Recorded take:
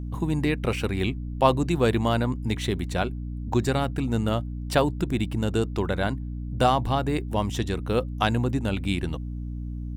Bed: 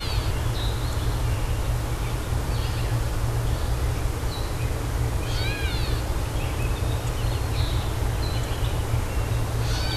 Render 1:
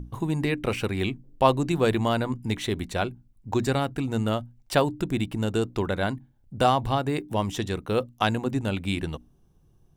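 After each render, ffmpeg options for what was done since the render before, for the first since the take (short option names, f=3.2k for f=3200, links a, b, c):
-af "bandreject=f=60:t=h:w=6,bandreject=f=120:t=h:w=6,bandreject=f=180:t=h:w=6,bandreject=f=240:t=h:w=6,bandreject=f=300:t=h:w=6"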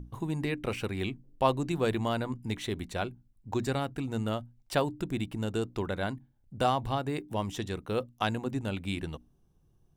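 -af "volume=-6dB"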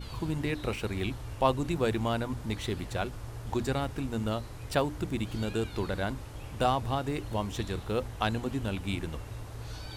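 -filter_complex "[1:a]volume=-16dB[a];[0:a][a]amix=inputs=2:normalize=0"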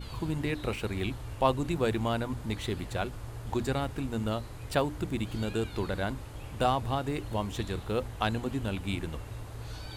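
-af "equalizer=f=5.6k:t=o:w=0.26:g=-4"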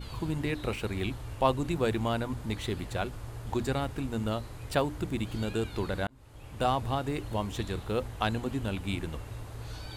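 -filter_complex "[0:a]asplit=2[a][b];[a]atrim=end=6.07,asetpts=PTS-STARTPTS,afade=t=out:st=6.066:d=0.004:c=hsin[c];[b]atrim=start=6.07,asetpts=PTS-STARTPTS,afade=t=in:d=0.67[d];[c][d]concat=n=2:v=0:a=1"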